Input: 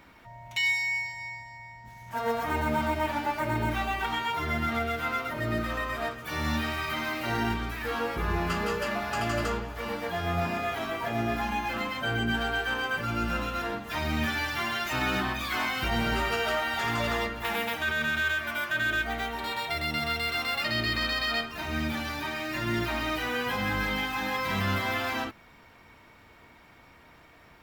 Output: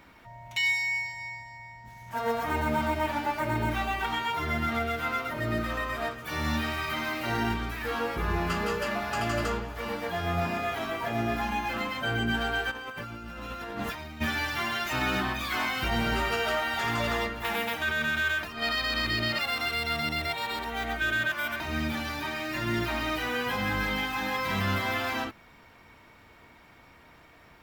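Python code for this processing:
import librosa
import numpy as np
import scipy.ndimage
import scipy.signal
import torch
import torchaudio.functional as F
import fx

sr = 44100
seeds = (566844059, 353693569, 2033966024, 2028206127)

y = fx.over_compress(x, sr, threshold_db=-39.0, ratio=-1.0, at=(12.7, 14.2), fade=0.02)
y = fx.edit(y, sr, fx.reverse_span(start_s=18.43, length_s=3.17), tone=tone)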